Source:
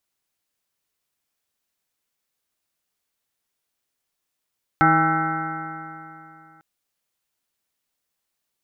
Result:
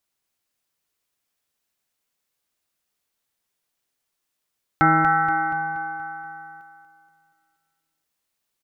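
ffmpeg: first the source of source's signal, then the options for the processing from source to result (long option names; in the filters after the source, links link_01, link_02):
-f lavfi -i "aevalsrc='0.0891*pow(10,-3*t/2.83)*sin(2*PI*158.13*t)+0.1*pow(10,-3*t/2.83)*sin(2*PI*317.07*t)+0.0158*pow(10,-3*t/2.83)*sin(2*PI*477.61*t)+0.0211*pow(10,-3*t/2.83)*sin(2*PI*640.54*t)+0.141*pow(10,-3*t/2.83)*sin(2*PI*806.61*t)+0.0158*pow(10,-3*t/2.83)*sin(2*PI*976.58*t)+0.0224*pow(10,-3*t/2.83)*sin(2*PI*1151.14*t)+0.158*pow(10,-3*t/2.83)*sin(2*PI*1330.99*t)+0.0944*pow(10,-3*t/2.83)*sin(2*PI*1516.75*t)+0.0106*pow(10,-3*t/2.83)*sin(2*PI*1709.03*t)+0.0282*pow(10,-3*t/2.83)*sin(2*PI*1908.4*t)+0.0282*pow(10,-3*t/2.83)*sin(2*PI*2115.38*t)':duration=1.8:sample_rate=44100"
-af "aecho=1:1:238|476|714|952|1190|1428:0.398|0.207|0.108|0.056|0.0291|0.0151"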